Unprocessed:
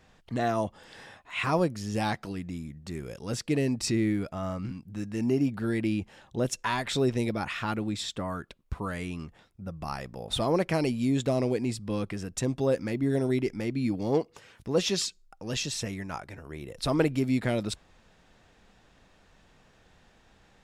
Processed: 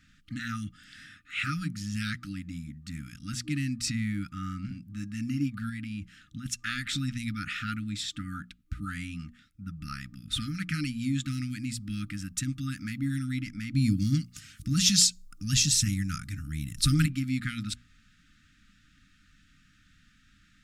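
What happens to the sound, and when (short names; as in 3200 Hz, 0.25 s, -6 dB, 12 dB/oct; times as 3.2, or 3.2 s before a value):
5.69–6.46 compressor, threshold -29 dBFS
11.33–13.23 high shelf 11000 Hz +9 dB
13.74–17.06 tone controls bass +11 dB, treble +13 dB
whole clip: notches 60/120/180/240 Hz; FFT band-reject 310–1200 Hz; dynamic EQ 260 Hz, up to -4 dB, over -40 dBFS, Q 3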